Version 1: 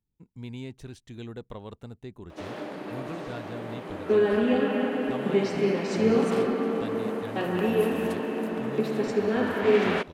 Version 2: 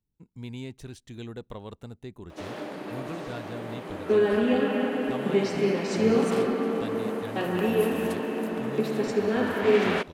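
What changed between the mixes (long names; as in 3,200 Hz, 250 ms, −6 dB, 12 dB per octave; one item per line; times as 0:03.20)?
speech: send on
master: add high-shelf EQ 5,500 Hz +5 dB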